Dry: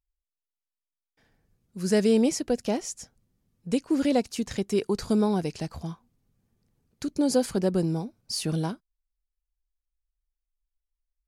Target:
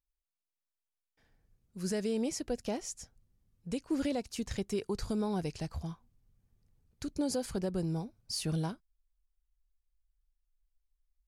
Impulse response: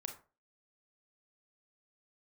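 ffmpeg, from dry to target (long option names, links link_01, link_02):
-af "asubboost=boost=3.5:cutoff=110,alimiter=limit=-18dB:level=0:latency=1:release=191,volume=-5.5dB"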